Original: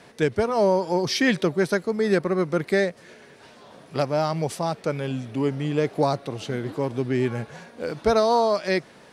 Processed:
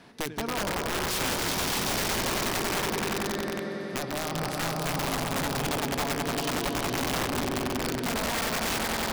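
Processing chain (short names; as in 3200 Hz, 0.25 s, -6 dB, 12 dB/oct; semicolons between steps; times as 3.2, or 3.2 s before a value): ten-band EQ 125 Hz -4 dB, 250 Hz +3 dB, 500 Hz -8 dB, 2000 Hz -4 dB, 8000 Hz -8 dB; compressor 5:1, threshold -28 dBFS, peak gain reduction 9.5 dB; swelling echo 93 ms, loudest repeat 5, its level -5.5 dB; wrapped overs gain 23 dB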